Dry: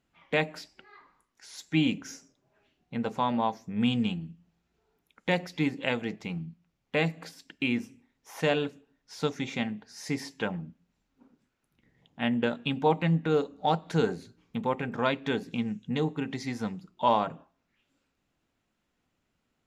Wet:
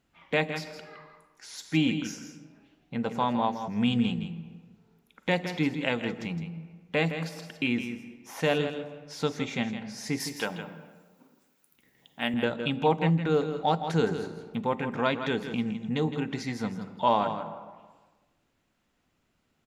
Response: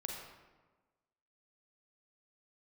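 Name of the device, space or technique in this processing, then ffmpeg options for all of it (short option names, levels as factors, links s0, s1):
ducked reverb: -filter_complex "[0:a]asettb=1/sr,asplit=3[s0][s1][s2];[s0]atrim=end=10.204[s3];[s1]atrim=start=10.2:end=12.34,asetpts=PTS-STARTPTS,afade=t=in:d=0.004:c=qsin,afade=t=out:st=2.136:d=0.004:c=qsin,aemphasis=mode=production:type=bsi[s4];[s2]atrim=start=12.336[s5];[s3][s4]acrossfade=d=0.004:c1=hsin:c2=qsin[s6];[s6][s5]acrossfade=d=0.004:c1=qsin:c2=hsin,asplit=3[s7][s8][s9];[1:a]atrim=start_sample=2205[s10];[s8][s10]afir=irnorm=-1:irlink=0[s11];[s9]apad=whole_len=867189[s12];[s11][s12]sidechaincompress=threshold=0.00562:ratio=8:attack=16:release=100,volume=0.708[s13];[s7][s13]amix=inputs=2:normalize=0,aecho=1:1:163:0.335"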